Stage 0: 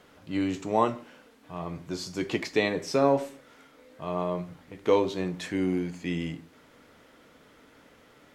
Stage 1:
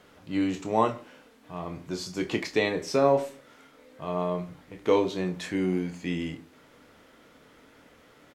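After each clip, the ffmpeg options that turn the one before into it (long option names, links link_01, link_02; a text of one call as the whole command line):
ffmpeg -i in.wav -filter_complex "[0:a]asplit=2[link_01][link_02];[link_02]adelay=27,volume=-9dB[link_03];[link_01][link_03]amix=inputs=2:normalize=0" out.wav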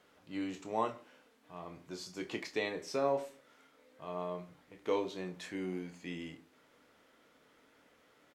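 ffmpeg -i in.wav -af "lowshelf=frequency=190:gain=-9,volume=-9dB" out.wav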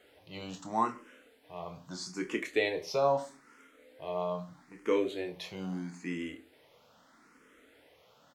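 ffmpeg -i in.wav -filter_complex "[0:a]asplit=2[link_01][link_02];[link_02]afreqshift=0.78[link_03];[link_01][link_03]amix=inputs=2:normalize=1,volume=7dB" out.wav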